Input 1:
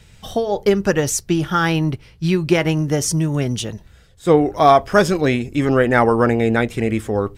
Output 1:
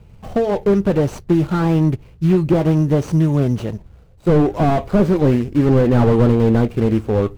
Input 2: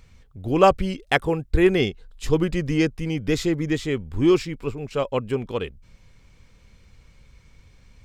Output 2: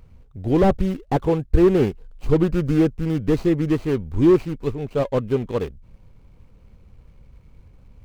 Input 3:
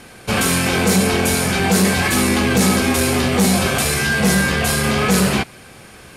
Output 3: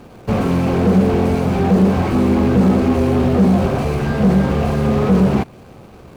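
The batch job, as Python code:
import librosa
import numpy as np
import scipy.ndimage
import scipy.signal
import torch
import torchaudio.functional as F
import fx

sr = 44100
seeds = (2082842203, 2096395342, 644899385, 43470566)

y = scipy.signal.medfilt(x, 25)
y = fx.slew_limit(y, sr, full_power_hz=69.0)
y = y * 10.0 ** (4.0 / 20.0)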